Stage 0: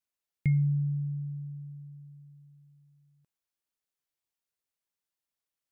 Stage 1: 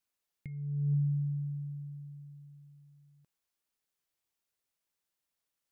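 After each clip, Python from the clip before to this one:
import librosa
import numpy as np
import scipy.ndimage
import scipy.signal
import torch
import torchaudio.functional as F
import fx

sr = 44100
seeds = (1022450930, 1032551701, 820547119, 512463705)

y = fx.over_compress(x, sr, threshold_db=-30.0, ratio=-0.5)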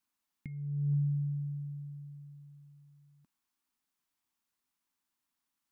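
y = fx.graphic_eq_10(x, sr, hz=(125, 250, 500, 1000), db=(-4, 11, -10, 7))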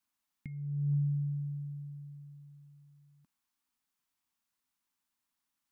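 y = fx.peak_eq(x, sr, hz=400.0, db=-4.5, octaves=0.77)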